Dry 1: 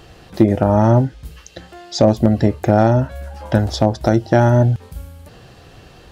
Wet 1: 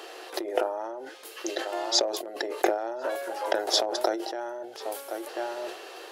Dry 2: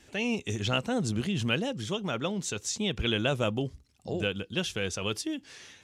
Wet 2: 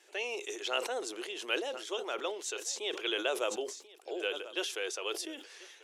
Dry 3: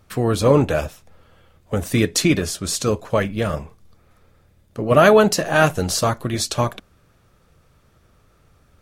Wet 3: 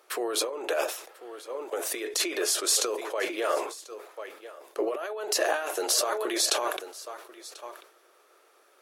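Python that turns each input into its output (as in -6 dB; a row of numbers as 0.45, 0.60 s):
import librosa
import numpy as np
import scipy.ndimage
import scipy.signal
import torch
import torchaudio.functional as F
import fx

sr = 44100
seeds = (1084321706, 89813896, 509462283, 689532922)

y = fx.peak_eq(x, sr, hz=11000.0, db=5.5, octaves=0.22)
y = y + 10.0 ** (-21.5 / 20.0) * np.pad(y, (int(1040 * sr / 1000.0), 0))[:len(y)]
y = fx.over_compress(y, sr, threshold_db=-23.0, ratio=-1.0)
y = scipy.signal.sosfilt(scipy.signal.ellip(4, 1.0, 50, 360.0, 'highpass', fs=sr, output='sos'), y)
y = fx.sustainer(y, sr, db_per_s=87.0)
y = y * 10.0 ** (-3.0 / 20.0)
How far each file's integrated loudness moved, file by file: -14.0, -4.5, -9.5 LU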